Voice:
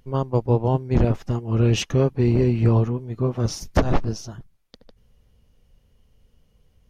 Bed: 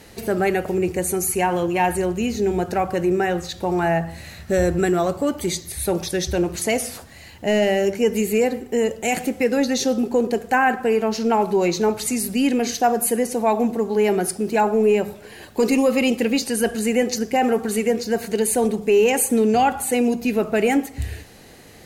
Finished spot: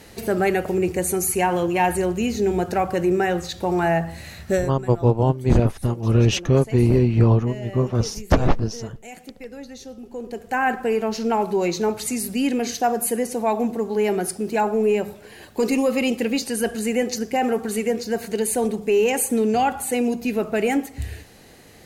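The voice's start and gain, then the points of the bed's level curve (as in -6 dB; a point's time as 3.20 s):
4.55 s, +2.0 dB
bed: 4.55 s 0 dB
4.77 s -18 dB
10.00 s -18 dB
10.67 s -2.5 dB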